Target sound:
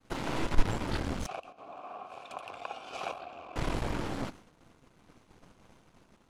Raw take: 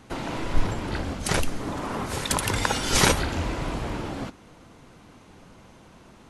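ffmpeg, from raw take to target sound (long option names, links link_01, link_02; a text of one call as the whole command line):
ffmpeg -i in.wav -filter_complex "[0:a]aeval=exprs='if(lt(val(0),0),0.251*val(0),val(0))':channel_layout=same,agate=range=-33dB:threshold=-45dB:ratio=3:detection=peak,asettb=1/sr,asplit=3[link_01][link_02][link_03];[link_01]atrim=end=1.264[link_04];[link_02]atrim=start=1.26:end=3.56,asetpts=PTS-STARTPTS,afade=type=in:duration=0.004:curve=qsin,afade=type=out:start_time=2.296:duration=0.004:curve=qsin,asplit=3[link_05][link_06][link_07];[link_05]bandpass=frequency=730:width_type=q:width=8,volume=0dB[link_08];[link_06]bandpass=frequency=1090:width_type=q:width=8,volume=-6dB[link_09];[link_07]bandpass=frequency=2440:width_type=q:width=8,volume=-9dB[link_10];[link_08][link_09][link_10]amix=inputs=3:normalize=0[link_11];[link_03]atrim=start=3.556[link_12];[link_04][link_11]acrossfade=duration=0.004:curve1=hsin:curve2=qsin[link_13];[link_13][link_12]acrossfade=duration=0.004:curve1=qsin:curve2=hsin" out.wav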